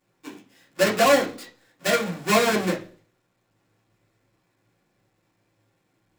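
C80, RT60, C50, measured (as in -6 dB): 18.0 dB, 0.40 s, 12.0 dB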